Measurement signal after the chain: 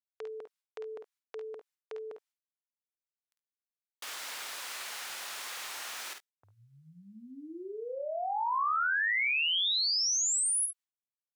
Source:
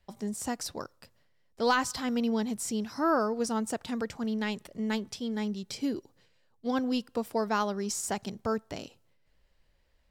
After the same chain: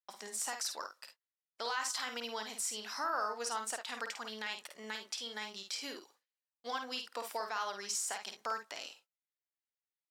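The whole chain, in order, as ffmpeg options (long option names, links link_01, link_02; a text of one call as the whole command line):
ffmpeg -i in.wav -filter_complex "[0:a]agate=range=-34dB:threshold=-55dB:ratio=16:detection=peak,highpass=1100,highshelf=frequency=12000:gain=-7,asplit=2[link_01][link_02];[link_02]acompressor=threshold=-46dB:ratio=6,volume=-1dB[link_03];[link_01][link_03]amix=inputs=2:normalize=0,alimiter=level_in=3dB:limit=-24dB:level=0:latency=1:release=47,volume=-3dB,asplit=2[link_04][link_05];[link_05]aecho=0:1:51|70:0.473|0.15[link_06];[link_04][link_06]amix=inputs=2:normalize=0" out.wav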